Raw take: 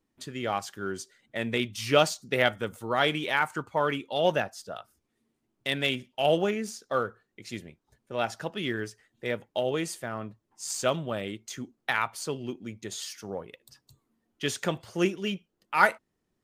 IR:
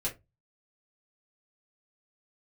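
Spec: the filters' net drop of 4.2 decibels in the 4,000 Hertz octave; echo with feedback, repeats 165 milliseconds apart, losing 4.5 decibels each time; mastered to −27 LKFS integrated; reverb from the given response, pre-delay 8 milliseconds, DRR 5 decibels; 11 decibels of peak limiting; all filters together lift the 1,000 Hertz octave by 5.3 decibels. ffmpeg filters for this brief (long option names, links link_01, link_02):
-filter_complex "[0:a]equalizer=frequency=1000:width_type=o:gain=7.5,equalizer=frequency=4000:width_type=o:gain=-6.5,alimiter=limit=-13.5dB:level=0:latency=1,aecho=1:1:165|330|495|660|825|990|1155|1320|1485:0.596|0.357|0.214|0.129|0.0772|0.0463|0.0278|0.0167|0.01,asplit=2[link_01][link_02];[1:a]atrim=start_sample=2205,adelay=8[link_03];[link_02][link_03]afir=irnorm=-1:irlink=0,volume=-8.5dB[link_04];[link_01][link_04]amix=inputs=2:normalize=0"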